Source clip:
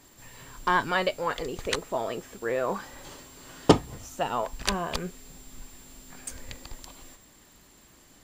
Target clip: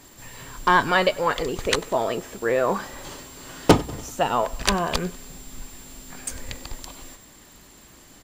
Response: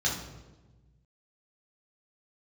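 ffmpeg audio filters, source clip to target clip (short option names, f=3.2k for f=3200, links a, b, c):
-af "aecho=1:1:96|192|288|384:0.0708|0.0425|0.0255|0.0153,aeval=exprs='0.668*(cos(1*acos(clip(val(0)/0.668,-1,1)))-cos(1*PI/2))+0.188*(cos(5*acos(clip(val(0)/0.668,-1,1)))-cos(5*PI/2))+0.0473*(cos(7*acos(clip(val(0)/0.668,-1,1)))-cos(7*PI/2))':c=same,volume=1dB"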